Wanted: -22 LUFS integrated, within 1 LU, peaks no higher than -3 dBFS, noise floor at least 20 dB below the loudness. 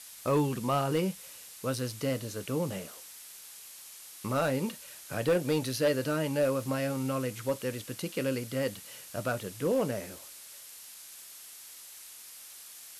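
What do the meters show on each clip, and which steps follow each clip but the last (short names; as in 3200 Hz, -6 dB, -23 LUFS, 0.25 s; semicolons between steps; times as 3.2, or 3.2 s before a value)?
clipped 0.4%; flat tops at -20.5 dBFS; noise floor -49 dBFS; noise floor target -52 dBFS; loudness -31.5 LUFS; peak -20.5 dBFS; loudness target -22.0 LUFS
-> clip repair -20.5 dBFS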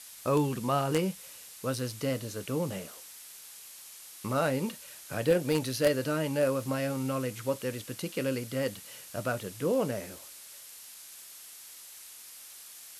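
clipped 0.0%; noise floor -49 dBFS; noise floor target -51 dBFS
-> noise print and reduce 6 dB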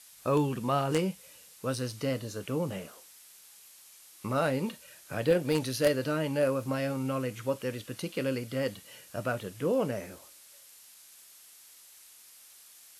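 noise floor -55 dBFS; loudness -31.5 LUFS; peak -11.5 dBFS; loudness target -22.0 LUFS
-> gain +9.5 dB; limiter -3 dBFS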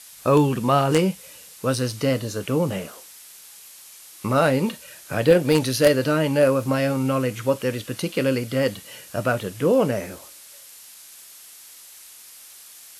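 loudness -22.0 LUFS; peak -3.0 dBFS; noise floor -45 dBFS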